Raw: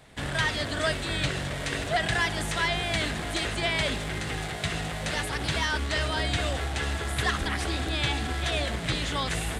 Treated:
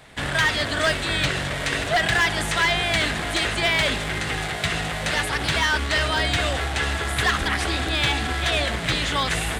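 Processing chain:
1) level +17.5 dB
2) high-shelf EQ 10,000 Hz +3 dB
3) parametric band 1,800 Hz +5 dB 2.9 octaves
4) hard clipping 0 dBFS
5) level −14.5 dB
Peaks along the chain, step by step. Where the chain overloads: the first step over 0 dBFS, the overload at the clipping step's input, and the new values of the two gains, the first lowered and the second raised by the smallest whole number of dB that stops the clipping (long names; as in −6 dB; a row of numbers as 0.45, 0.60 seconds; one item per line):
+3.0, +3.5, +7.0, 0.0, −14.5 dBFS
step 1, 7.0 dB
step 1 +10.5 dB, step 5 −7.5 dB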